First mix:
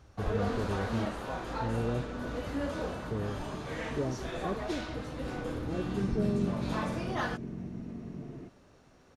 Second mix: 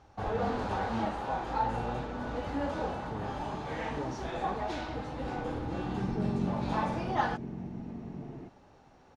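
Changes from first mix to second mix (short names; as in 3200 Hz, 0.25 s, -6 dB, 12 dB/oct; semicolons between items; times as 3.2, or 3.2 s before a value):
speech -6.5 dB; first sound: add air absorption 63 m; master: add bell 830 Hz +12.5 dB 0.28 oct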